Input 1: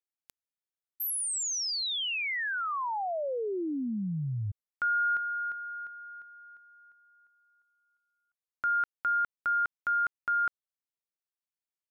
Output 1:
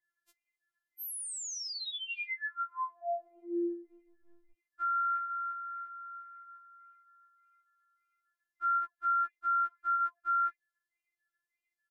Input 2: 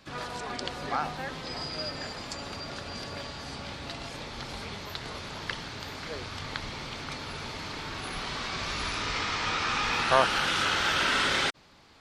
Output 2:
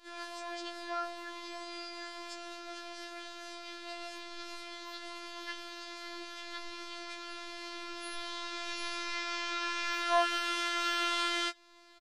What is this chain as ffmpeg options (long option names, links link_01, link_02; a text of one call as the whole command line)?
ffmpeg -i in.wav -filter_complex "[0:a]asplit=2[link_01][link_02];[link_02]acompressor=threshold=-43dB:ratio=6:attack=0.22:release=147:detection=rms,volume=-2.5dB[link_03];[link_01][link_03]amix=inputs=2:normalize=0,afftfilt=real='hypot(re,im)*cos(PI*b)':imag='0':win_size=1024:overlap=0.75,aeval=exprs='val(0)+0.00158*sin(2*PI*1900*n/s)':channel_layout=same,flanger=delay=2.5:depth=7:regen=-81:speed=1.7:shape=sinusoidal,aresample=32000,aresample=44100,afftfilt=real='re*4*eq(mod(b,16),0)':imag='im*4*eq(mod(b,16),0)':win_size=2048:overlap=0.75,volume=-5dB" out.wav